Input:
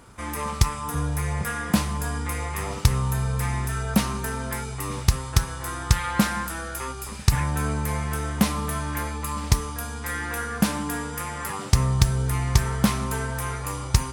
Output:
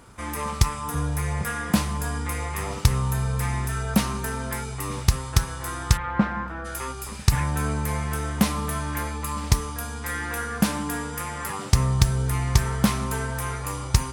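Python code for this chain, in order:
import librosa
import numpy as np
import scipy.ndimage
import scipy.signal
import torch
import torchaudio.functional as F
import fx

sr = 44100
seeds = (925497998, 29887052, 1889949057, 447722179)

y = fx.lowpass(x, sr, hz=1600.0, slope=12, at=(5.96, 6.64), fade=0.02)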